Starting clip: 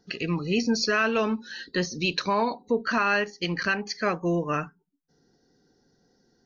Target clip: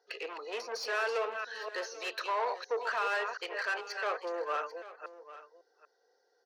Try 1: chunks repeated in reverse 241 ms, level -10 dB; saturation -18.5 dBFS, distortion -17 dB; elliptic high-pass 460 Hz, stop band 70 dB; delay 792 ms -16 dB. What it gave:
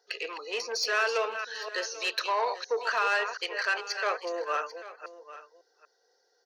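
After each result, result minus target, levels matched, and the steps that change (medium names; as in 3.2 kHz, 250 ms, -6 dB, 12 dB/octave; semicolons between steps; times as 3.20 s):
saturation: distortion -7 dB; 8 kHz band +4.5 dB
change: saturation -25 dBFS, distortion -10 dB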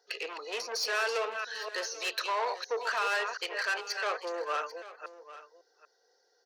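8 kHz band +6.5 dB
add after elliptic high-pass: treble shelf 3.2 kHz -11 dB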